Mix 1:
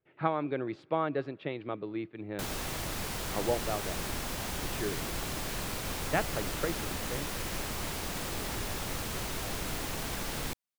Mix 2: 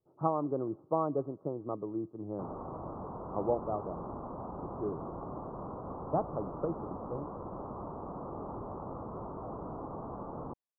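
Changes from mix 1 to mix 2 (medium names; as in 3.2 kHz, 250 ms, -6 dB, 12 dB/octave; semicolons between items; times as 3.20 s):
background: add high-pass 170 Hz 6 dB/octave; master: add steep low-pass 1.2 kHz 72 dB/octave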